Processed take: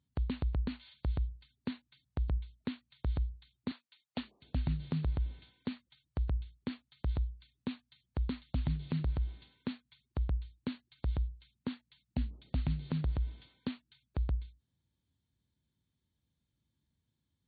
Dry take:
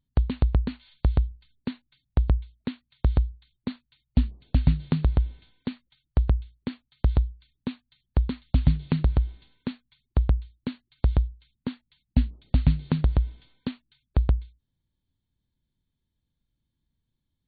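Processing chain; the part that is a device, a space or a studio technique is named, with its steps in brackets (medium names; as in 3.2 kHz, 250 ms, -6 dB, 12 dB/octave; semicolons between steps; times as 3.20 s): 3.71–4.42 s: high-pass 490 Hz 12 dB/octave; podcast mastering chain (high-pass 60 Hz 24 dB/octave; de-esser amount 100%; compression 2.5:1, threshold -26 dBFS, peak gain reduction 8 dB; peak limiter -23 dBFS, peak gain reduction 9.5 dB; MP3 112 kbps 22.05 kHz)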